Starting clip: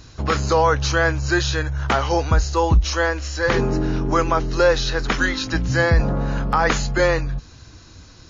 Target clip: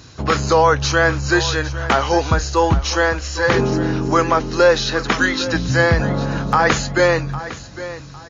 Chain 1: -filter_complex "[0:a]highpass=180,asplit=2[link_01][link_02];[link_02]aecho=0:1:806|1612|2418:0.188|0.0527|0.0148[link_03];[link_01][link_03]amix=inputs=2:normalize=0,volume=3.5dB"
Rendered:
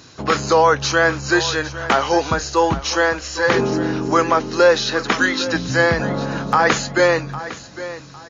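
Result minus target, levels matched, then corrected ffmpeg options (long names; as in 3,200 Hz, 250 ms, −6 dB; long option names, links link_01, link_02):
125 Hz band −6.0 dB
-filter_complex "[0:a]highpass=87,asplit=2[link_01][link_02];[link_02]aecho=0:1:806|1612|2418:0.188|0.0527|0.0148[link_03];[link_01][link_03]amix=inputs=2:normalize=0,volume=3.5dB"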